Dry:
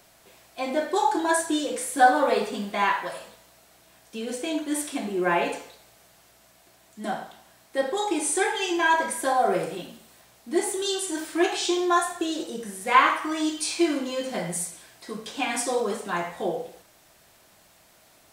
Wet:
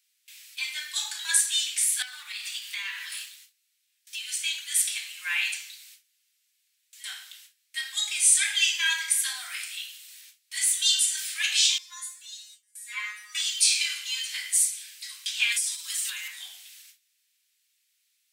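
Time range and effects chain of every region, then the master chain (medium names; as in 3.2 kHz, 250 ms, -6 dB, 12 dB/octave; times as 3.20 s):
2.02–4.28 s: waveshaping leveller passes 1 + compression 4:1, threshold -30 dBFS
11.78–13.35 s: peaking EQ 3.1 kHz -7 dB 0.4 oct + feedback comb 210 Hz, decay 0.24 s, mix 100%
15.52–16.28 s: tilt EQ +3 dB/octave + comb 6.1 ms, depth 69% + compression 12:1, threshold -31 dBFS
whole clip: inverse Chebyshev high-pass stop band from 500 Hz, stop band 70 dB; gate with hold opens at -45 dBFS; trim +8.5 dB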